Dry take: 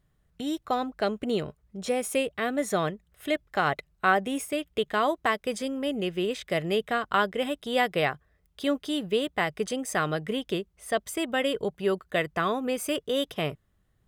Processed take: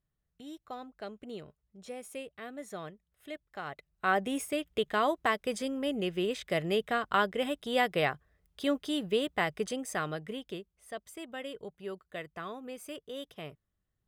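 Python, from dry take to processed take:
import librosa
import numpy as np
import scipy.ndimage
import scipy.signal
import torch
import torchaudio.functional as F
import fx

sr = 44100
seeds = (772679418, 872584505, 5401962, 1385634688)

y = fx.gain(x, sr, db=fx.line((3.74, -15.0), (4.2, -3.0), (9.52, -3.0), (10.94, -14.0)))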